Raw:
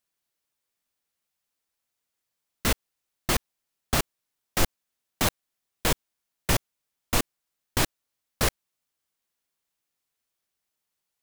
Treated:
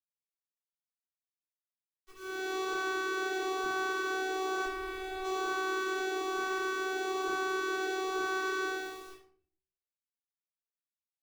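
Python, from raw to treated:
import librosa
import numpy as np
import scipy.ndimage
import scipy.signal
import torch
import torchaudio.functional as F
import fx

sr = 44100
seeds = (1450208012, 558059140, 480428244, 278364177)

y = fx.spec_blur(x, sr, span_ms=663.0)
y = fx.leveller(y, sr, passes=1)
y = fx.rider(y, sr, range_db=10, speed_s=0.5)
y = fx.auto_swell(y, sr, attack_ms=142.0)
y = fx.vocoder(y, sr, bands=16, carrier='saw', carrier_hz=378.0)
y = fx.quant_dither(y, sr, seeds[0], bits=10, dither='none')
y = fx.filter_lfo_notch(y, sr, shape='saw_up', hz=1.1, low_hz=390.0, high_hz=2000.0, q=2.2)
y = fx.tube_stage(y, sr, drive_db=42.0, bias=0.7, at=(4.64, 5.23), fade=0.02)
y = fx.room_shoebox(y, sr, seeds[1], volume_m3=58.0, walls='mixed', distance_m=3.4)
y = y * 10.0 ** (-5.5 / 20.0)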